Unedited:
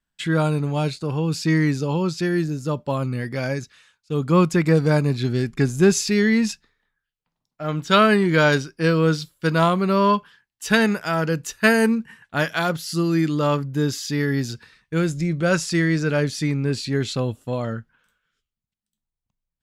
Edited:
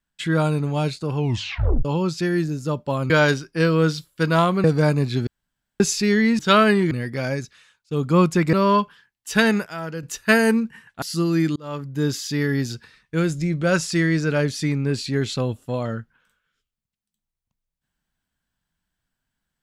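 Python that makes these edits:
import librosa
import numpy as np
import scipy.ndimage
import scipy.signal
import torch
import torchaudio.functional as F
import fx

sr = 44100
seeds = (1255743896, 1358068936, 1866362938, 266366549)

y = fx.edit(x, sr, fx.tape_stop(start_s=1.16, length_s=0.69),
    fx.swap(start_s=3.1, length_s=1.62, other_s=8.34, other_length_s=1.54),
    fx.room_tone_fill(start_s=5.35, length_s=0.53),
    fx.cut(start_s=6.47, length_s=1.35),
    fx.clip_gain(start_s=11.01, length_s=0.37, db=-8.5),
    fx.cut(start_s=12.37, length_s=0.44),
    fx.fade_in_span(start_s=13.35, length_s=0.51), tone=tone)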